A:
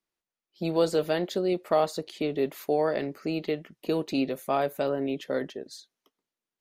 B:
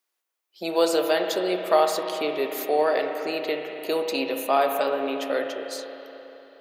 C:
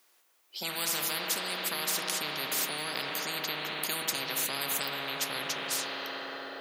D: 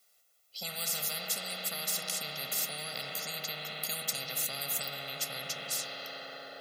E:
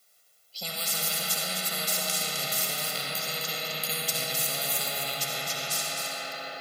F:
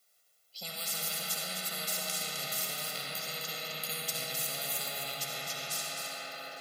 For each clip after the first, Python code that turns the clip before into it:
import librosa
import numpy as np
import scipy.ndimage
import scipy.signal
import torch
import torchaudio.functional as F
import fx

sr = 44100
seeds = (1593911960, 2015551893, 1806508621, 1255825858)

y1 = scipy.signal.sosfilt(scipy.signal.butter(2, 520.0, 'highpass', fs=sr, output='sos'), x)
y1 = fx.high_shelf(y1, sr, hz=10000.0, db=8.5)
y1 = fx.rev_spring(y1, sr, rt60_s=3.5, pass_ms=(33, 60), chirp_ms=80, drr_db=4.0)
y1 = y1 * librosa.db_to_amplitude(6.0)
y2 = fx.spectral_comp(y1, sr, ratio=10.0)
y2 = y2 * librosa.db_to_amplitude(-4.0)
y3 = scipy.signal.sosfilt(scipy.signal.butter(2, 61.0, 'highpass', fs=sr, output='sos'), y2)
y3 = fx.peak_eq(y3, sr, hz=1200.0, db=-7.5, octaves=2.6)
y3 = y3 + 0.84 * np.pad(y3, (int(1.5 * sr / 1000.0), 0))[:len(y3)]
y3 = y3 * librosa.db_to_amplitude(-2.5)
y4 = y3 + 10.0 ** (-6.5 / 20.0) * np.pad(y3, (int(259 * sr / 1000.0), 0))[:len(y3)]
y4 = fx.rev_freeverb(y4, sr, rt60_s=2.0, hf_ratio=0.8, predelay_ms=30, drr_db=1.5)
y4 = y4 * librosa.db_to_amplitude(4.0)
y5 = fx.echo_stepped(y4, sr, ms=339, hz=1600.0, octaves=0.7, feedback_pct=70, wet_db=-12.0)
y5 = y5 * librosa.db_to_amplitude(-6.5)